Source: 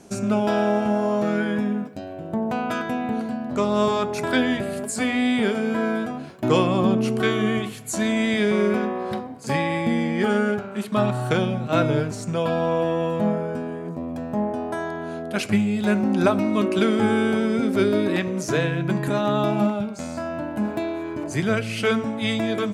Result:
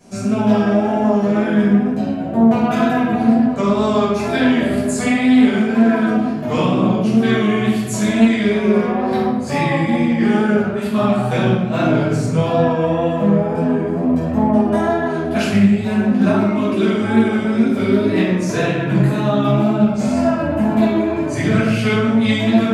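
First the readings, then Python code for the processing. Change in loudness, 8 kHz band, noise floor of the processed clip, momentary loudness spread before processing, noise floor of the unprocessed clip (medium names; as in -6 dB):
+7.0 dB, +2.5 dB, -22 dBFS, 9 LU, -35 dBFS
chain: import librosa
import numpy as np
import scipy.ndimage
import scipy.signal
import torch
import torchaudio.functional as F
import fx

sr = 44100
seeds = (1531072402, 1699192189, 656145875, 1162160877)

y = fx.rider(x, sr, range_db=5, speed_s=0.5)
y = fx.wow_flutter(y, sr, seeds[0], rate_hz=2.1, depth_cents=52.0)
y = fx.room_shoebox(y, sr, seeds[1], volume_m3=490.0, walls='mixed', distance_m=5.8)
y = fx.doppler_dist(y, sr, depth_ms=0.12)
y = F.gain(torch.from_numpy(y), -8.0).numpy()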